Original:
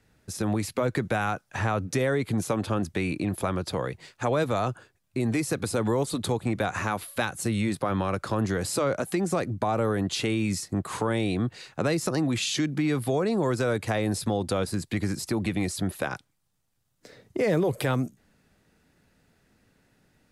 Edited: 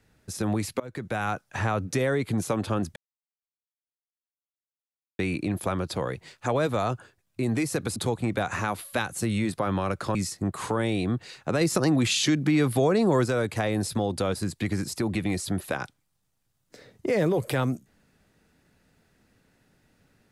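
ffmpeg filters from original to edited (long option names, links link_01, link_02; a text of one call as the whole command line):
ffmpeg -i in.wav -filter_complex "[0:a]asplit=7[link_01][link_02][link_03][link_04][link_05][link_06][link_07];[link_01]atrim=end=0.8,asetpts=PTS-STARTPTS,afade=type=out:start_time=0.796:duration=0.004:curve=hsin:silence=0.0794328[link_08];[link_02]atrim=start=0.8:end=2.96,asetpts=PTS-STARTPTS,afade=type=in:duration=0.52:silence=0.0794328,afade=type=out:start_time=2.156:duration=0.004:curve=hsin,apad=pad_dur=2.23[link_09];[link_03]atrim=start=2.96:end=5.732,asetpts=PTS-STARTPTS,afade=type=in:duration=0.004:curve=hsin[link_10];[link_04]atrim=start=6.188:end=8.382[link_11];[link_05]atrim=start=10.458:end=11.922[link_12];[link_06]atrim=start=11.918:end=13.572,asetpts=PTS-STARTPTS,volume=3.5dB[link_13];[link_07]atrim=start=13.568[link_14];[link_08][link_09][link_10]concat=n=3:v=0:a=1[link_15];[link_15][link_11]acrossfade=duration=0.004:curve1=hsin:curve2=hsin[link_16];[link_16][link_12]acrossfade=duration=0.004:curve1=hsin:curve2=hsin[link_17];[link_17][link_13]acrossfade=duration=0.004:curve1=hsin:curve2=hsin[link_18];[link_18][link_14]acrossfade=duration=0.004:curve1=hsin:curve2=hsin" out.wav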